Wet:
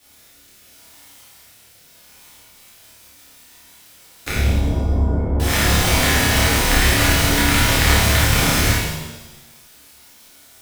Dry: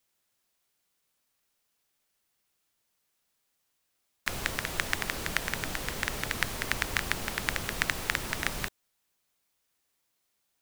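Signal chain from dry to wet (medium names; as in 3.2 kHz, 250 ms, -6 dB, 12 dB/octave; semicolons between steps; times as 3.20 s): cycle switcher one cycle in 3, inverted; rotary cabinet horn 0.75 Hz, later 6 Hz, at 2.05 s; power-law waveshaper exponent 0.7; 4.29–5.40 s: Gaussian low-pass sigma 14 samples; on a send: flutter echo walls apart 4.8 m, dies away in 0.59 s; on the sum: pitch-shifted reverb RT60 1 s, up +7 st, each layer -8 dB, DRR -7 dB; trim +1 dB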